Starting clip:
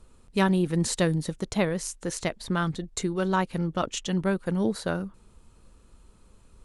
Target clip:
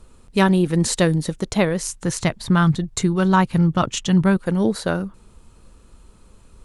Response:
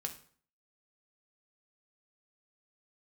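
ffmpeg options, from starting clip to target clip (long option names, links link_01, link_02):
-filter_complex "[0:a]asettb=1/sr,asplit=3[link_01][link_02][link_03];[link_01]atrim=end=1.894[link_04];[link_02]atrim=start=1.89:end=4.37,asetpts=PTS-STARTPTS,afade=type=in:duration=0.004:curve=qsin,afade=type=out:start_time=2.476:duration=0.004:curve=qsin,equalizer=frequency=125:width_type=o:width=1:gain=11,equalizer=frequency=500:width_type=o:width=1:gain=-4,equalizer=frequency=1000:width_type=o:width=1:gain=3[link_05];[link_03]atrim=start=4.366[link_06];[link_04][link_05]acrossfade=duration=0.004:curve1=hsin:curve2=qsin[link_07];[link_07][link_06]acrossfade=duration=0.004:curve1=qsin:curve2=hsin,volume=6.5dB"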